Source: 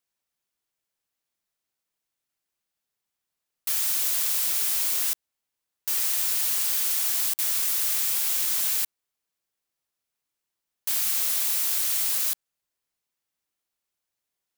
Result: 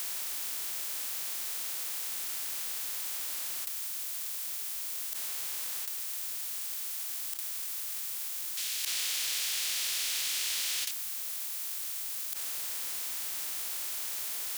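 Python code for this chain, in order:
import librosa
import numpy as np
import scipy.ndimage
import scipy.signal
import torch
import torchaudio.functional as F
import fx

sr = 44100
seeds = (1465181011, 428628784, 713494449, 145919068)

y = fx.bin_compress(x, sr, power=0.4)
y = scipy.signal.sosfilt(scipy.signal.butter(2, 79.0, 'highpass', fs=sr, output='sos'), y)
y = fx.low_shelf(y, sr, hz=210.0, db=-6.5)
y = fx.over_compress(y, sr, threshold_db=-29.0, ratio=-0.5)
y = fx.weighting(y, sr, curve='D', at=(8.57, 10.91))
y = y * librosa.db_to_amplitude(-1.5)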